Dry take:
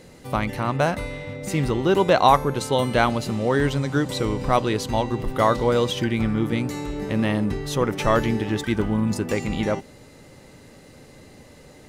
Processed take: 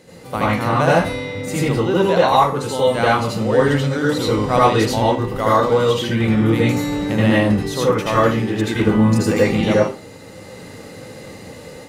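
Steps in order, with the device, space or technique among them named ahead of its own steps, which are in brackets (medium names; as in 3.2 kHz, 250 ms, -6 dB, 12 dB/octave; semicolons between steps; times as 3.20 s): far laptop microphone (reverberation RT60 0.30 s, pre-delay 73 ms, DRR -6.5 dB; high-pass 110 Hz 6 dB/octave; level rider gain up to 5.5 dB); trim -1 dB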